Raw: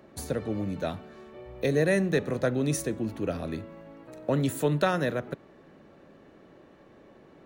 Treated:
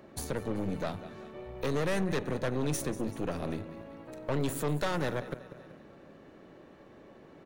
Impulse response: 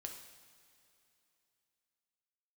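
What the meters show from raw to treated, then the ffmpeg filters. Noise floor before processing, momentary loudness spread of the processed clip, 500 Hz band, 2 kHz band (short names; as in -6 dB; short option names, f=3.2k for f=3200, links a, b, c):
-55 dBFS, 22 LU, -5.5 dB, -5.5 dB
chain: -af "aecho=1:1:191|382|573|764:0.141|0.0678|0.0325|0.0156,aeval=exprs='(tanh(25.1*val(0)+0.8)-tanh(0.8))/25.1':c=same,alimiter=level_in=4dB:limit=-24dB:level=0:latency=1:release=267,volume=-4dB,volume=5.5dB"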